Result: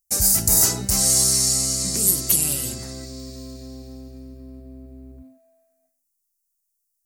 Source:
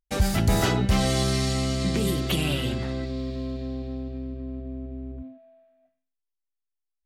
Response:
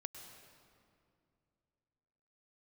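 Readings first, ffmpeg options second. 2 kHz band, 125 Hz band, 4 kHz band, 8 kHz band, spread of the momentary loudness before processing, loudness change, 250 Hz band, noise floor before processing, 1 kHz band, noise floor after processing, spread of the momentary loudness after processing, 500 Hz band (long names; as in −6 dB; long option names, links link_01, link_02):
−6.0 dB, −6.0 dB, +4.5 dB, +19.0 dB, 14 LU, +9.5 dB, −6.0 dB, −83 dBFS, −6.0 dB, −76 dBFS, 20 LU, −6.0 dB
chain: -af "aexciter=amount=14.3:drive=6.9:freq=5100,volume=-6dB"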